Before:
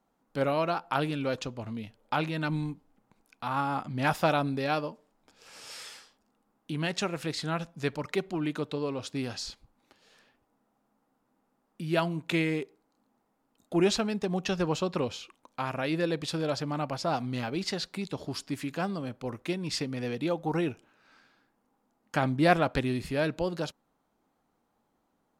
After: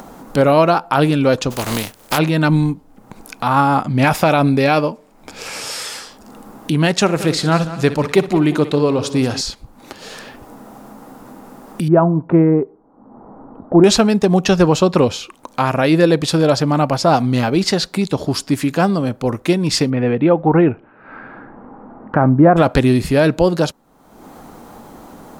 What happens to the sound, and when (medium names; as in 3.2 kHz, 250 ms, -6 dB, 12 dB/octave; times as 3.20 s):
1.50–2.17 s: spectral contrast reduction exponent 0.42
3.95–5.63 s: peaking EQ 2.3 kHz +7 dB 0.33 oct
7.00–9.41 s: multi-head delay 61 ms, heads first and third, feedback 40%, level -15 dB
11.88–13.84 s: low-pass 1.2 kHz 24 dB/octave
19.89–22.56 s: low-pass 2.7 kHz -> 1.4 kHz 24 dB/octave
whole clip: peaking EQ 2.7 kHz -4.5 dB 2 oct; upward compressor, threshold -38 dBFS; loudness maximiser +18 dB; trim -1 dB